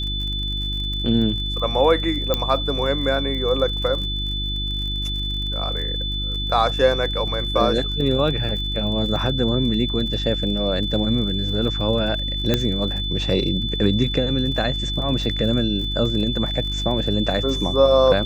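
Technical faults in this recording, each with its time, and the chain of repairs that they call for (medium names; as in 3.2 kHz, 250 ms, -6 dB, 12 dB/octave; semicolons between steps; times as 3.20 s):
crackle 47 per s -30 dBFS
hum 50 Hz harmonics 7 -27 dBFS
whine 3.5 kHz -26 dBFS
2.34 s: pop -6 dBFS
12.54 s: pop -5 dBFS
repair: de-click; de-hum 50 Hz, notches 7; band-stop 3.5 kHz, Q 30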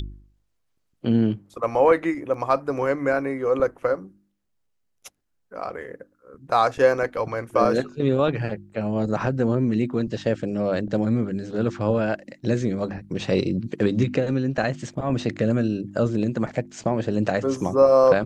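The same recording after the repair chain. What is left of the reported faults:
2.34 s: pop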